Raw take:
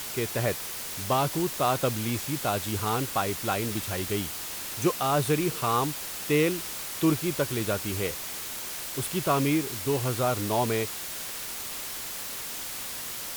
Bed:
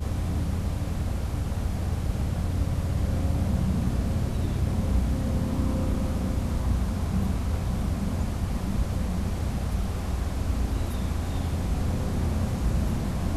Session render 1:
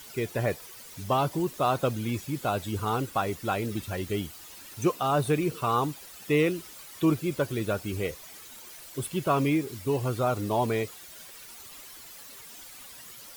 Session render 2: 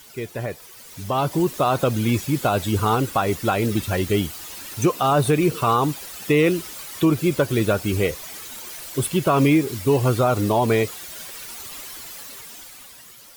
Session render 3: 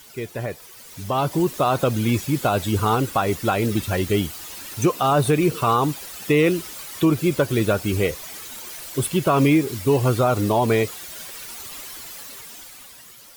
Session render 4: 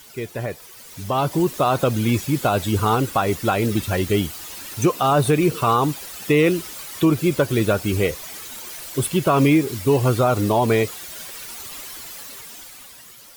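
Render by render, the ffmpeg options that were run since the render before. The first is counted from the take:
-af "afftdn=nr=13:nf=-36"
-af "alimiter=limit=0.112:level=0:latency=1:release=120,dynaudnorm=f=180:g=13:m=3.16"
-af anull
-af "volume=1.12"

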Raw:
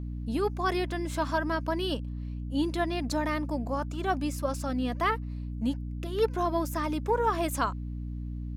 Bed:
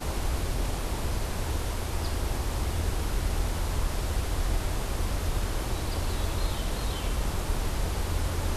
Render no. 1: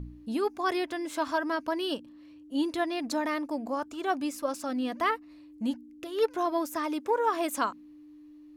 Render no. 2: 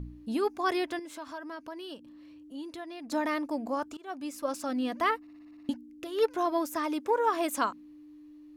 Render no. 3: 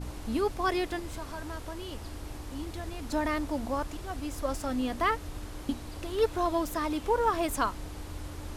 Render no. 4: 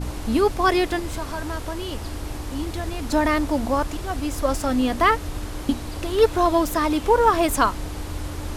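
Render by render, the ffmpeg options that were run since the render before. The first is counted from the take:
-af "bandreject=f=60:t=h:w=4,bandreject=f=120:t=h:w=4,bandreject=f=180:t=h:w=4,bandreject=f=240:t=h:w=4"
-filter_complex "[0:a]asettb=1/sr,asplit=3[s0][s1][s2];[s0]atrim=end=0.994[s3];[s1]atrim=start=0.99:end=3.12,asetpts=PTS-STARTPTS,afade=t=in:d=0.004:c=qsin,afade=t=out:st=2.126:d=0.004:c=qsin,acompressor=threshold=0.00447:ratio=2:attack=3.2:release=140:knee=1:detection=peak[s4];[s2]atrim=start=3.116[s5];[s3][s4]acrossfade=d=0.004:c1=hsin:c2=qsin[s6];[s6][s5]acrossfade=d=0.004:c1=qsin:c2=hsin,asplit=10[s7][s8][s9][s10][s11][s12][s13][s14][s15][s16];[s7]atrim=end=3.97,asetpts=PTS-STARTPTS,afade=t=out:st=3.966:d=0.004:c=hsin:silence=0.0707946[s17];[s8]atrim=start=3.97:end=5.272,asetpts=PTS-STARTPTS,afade=t=in:d=0.58:silence=0.0707946[s18];[s9]atrim=start=5.208:end=5.272[s19];[s10]atrim=start=5.208:end=5.272[s20];[s11]atrim=start=5.208:end=5.272[s21];[s12]atrim=start=5.208:end=5.272[s22];[s13]atrim=start=5.208:end=5.272[s23];[s14]atrim=start=5.208:end=5.272[s24];[s15]atrim=start=5.208:end=5.272[s25];[s16]atrim=start=5.688[s26];[s17][s18]concat=n=2:v=0:a=1[s27];[s27][s19]acrossfade=d=0.004:c1=hsin:c2=hsin[s28];[s28][s20]acrossfade=d=0.004:c1=hsin:c2=hsin[s29];[s29][s21]acrossfade=d=0.004:c1=hsin:c2=hsin[s30];[s30][s22]acrossfade=d=0.004:c1=hsin:c2=hsin[s31];[s31][s23]acrossfade=d=0.004:c1=hsin:c2=hsin[s32];[s32][s24]acrossfade=d=0.004:c1=hsin:c2=hsin[s33];[s33][s25]acrossfade=d=0.004:c1=hsin:c2=hsin[s34];[s34][s26]acrossfade=d=0.004:c1=hsin:c2=hsin"
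-filter_complex "[1:a]volume=0.266[s0];[0:a][s0]amix=inputs=2:normalize=0"
-af "volume=2.99"

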